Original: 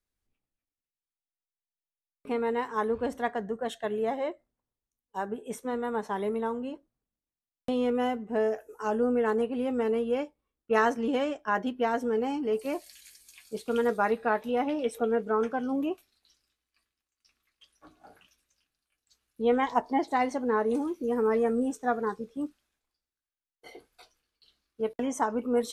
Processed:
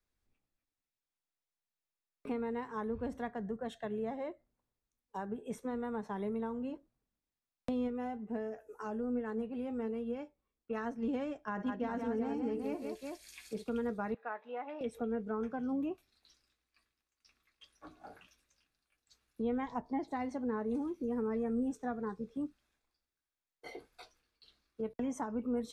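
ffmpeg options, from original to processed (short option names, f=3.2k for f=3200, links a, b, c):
-filter_complex "[0:a]asplit=3[a][b][c];[a]afade=t=out:st=7.87:d=0.02[d];[b]flanger=delay=3.8:depth=1.6:regen=78:speed=1.3:shape=triangular,afade=t=in:st=7.87:d=0.02,afade=t=out:st=11.01:d=0.02[e];[c]afade=t=in:st=11.01:d=0.02[f];[d][e][f]amix=inputs=3:normalize=0,asettb=1/sr,asplit=3[g][h][i];[g]atrim=end=11.514[j];[h]atrim=start=11.51:end=13.64,asetpts=PTS-STARTPTS,afade=t=in:d=0.004:c=qsin,afade=t=out:st=2.126:d=0.004:c=qsin,aecho=1:1:55|130|172|374:0.224|0.106|0.501|0.376,atrim=end_sample=93933[k];[i]atrim=start=13.636[l];[j][k]acrossfade=d=0.004:c1=hsin:c2=qsin[m];[m][l]acrossfade=d=0.004:c1=qsin:c2=hsin,asettb=1/sr,asplit=3[n][o][p];[n]atrim=end=14.144[q];[o]atrim=start=14.14:end=14.81,asetpts=PTS-STARTPTS,afade=t=in:d=0.004:c=qsin,afade=t=out:st=0.666:d=0.004:c=qsin,highpass=710,lowpass=2.3k[r];[p]atrim=start=14.806[s];[q][r]acrossfade=d=0.004:c1=hsin:c2=qsin[t];[t][s]acrossfade=d=0.004:c1=qsin:c2=hsin,highshelf=f=7.4k:g=-9,bandreject=f=3k:w=15,acrossover=split=200[u][v];[v]acompressor=threshold=-44dB:ratio=3[w];[u][w]amix=inputs=2:normalize=0,volume=2dB"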